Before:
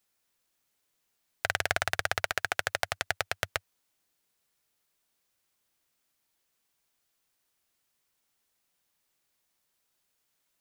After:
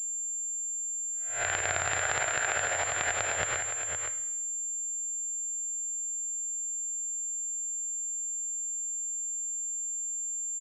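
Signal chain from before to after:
peak hold with a rise ahead of every peak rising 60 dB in 0.41 s
brickwall limiter −8.5 dBFS, peak gain reduction 5.5 dB
single-tap delay 517 ms −7 dB
coupled-rooms reverb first 0.9 s, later 2.4 s, from −28 dB, DRR 9 dB
switching amplifier with a slow clock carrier 7,300 Hz
level −1.5 dB

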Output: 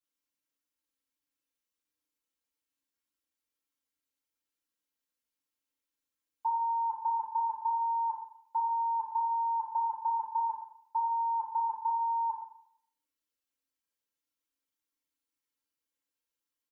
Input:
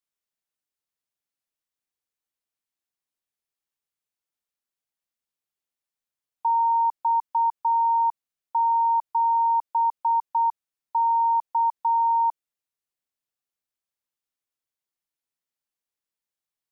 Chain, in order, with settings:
parametric band 750 Hz −12.5 dB 0.21 octaves
comb filter 3.7 ms, depth 79%
feedback delay network reverb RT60 0.66 s, low-frequency decay 1×, high-frequency decay 0.75×, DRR −6.5 dB
level −9 dB

